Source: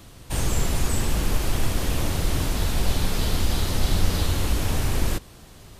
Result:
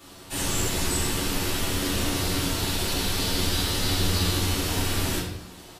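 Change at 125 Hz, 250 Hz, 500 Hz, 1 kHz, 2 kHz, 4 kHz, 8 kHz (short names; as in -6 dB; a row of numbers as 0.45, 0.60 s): -3.0, +1.0, +0.5, +0.5, +2.5, +5.0, +3.5 dB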